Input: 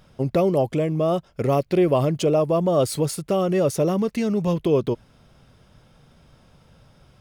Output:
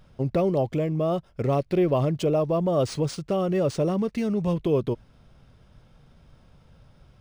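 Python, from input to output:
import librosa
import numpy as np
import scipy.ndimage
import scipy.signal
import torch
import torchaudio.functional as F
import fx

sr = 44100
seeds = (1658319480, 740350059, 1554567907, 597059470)

y = fx.low_shelf(x, sr, hz=89.0, db=8.5)
y = np.interp(np.arange(len(y)), np.arange(len(y))[::3], y[::3])
y = F.gain(torch.from_numpy(y), -4.0).numpy()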